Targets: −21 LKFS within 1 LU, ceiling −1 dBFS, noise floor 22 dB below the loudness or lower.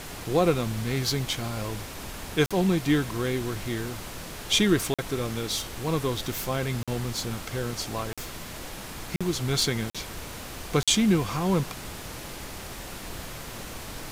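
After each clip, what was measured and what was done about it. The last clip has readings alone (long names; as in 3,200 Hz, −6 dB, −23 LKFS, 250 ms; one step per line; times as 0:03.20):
number of dropouts 7; longest dropout 46 ms; background noise floor −39 dBFS; target noise floor −51 dBFS; integrated loudness −28.5 LKFS; sample peak −10.0 dBFS; target loudness −21.0 LKFS
→ repair the gap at 0:02.46/0:04.94/0:06.83/0:08.13/0:09.16/0:09.90/0:10.83, 46 ms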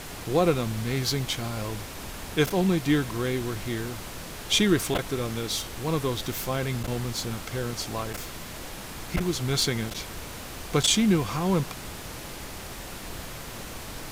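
number of dropouts 0; background noise floor −39 dBFS; target noise floor −50 dBFS
→ noise reduction from a noise print 11 dB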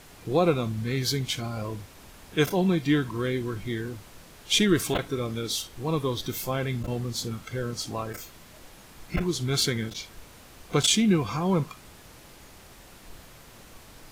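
background noise floor −50 dBFS; integrated loudness −27.0 LKFS; sample peak −10.0 dBFS; target loudness −21.0 LKFS
→ level +6 dB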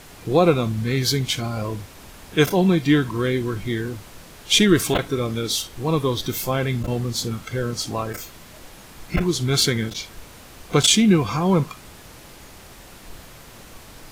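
integrated loudness −21.0 LKFS; sample peak −4.0 dBFS; background noise floor −44 dBFS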